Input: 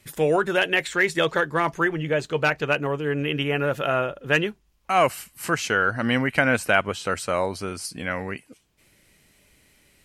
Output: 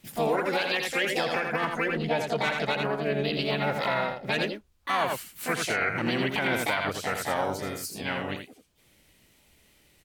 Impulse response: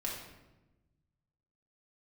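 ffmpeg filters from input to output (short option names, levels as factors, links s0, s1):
-filter_complex "[0:a]asplit=3[s0][s1][s2];[s1]asetrate=58866,aresample=44100,atempo=0.749154,volume=0.501[s3];[s2]asetrate=66075,aresample=44100,atempo=0.66742,volume=0.708[s4];[s0][s3][s4]amix=inputs=3:normalize=0,aecho=1:1:83:0.473,alimiter=limit=0.282:level=0:latency=1:release=97,volume=0.531"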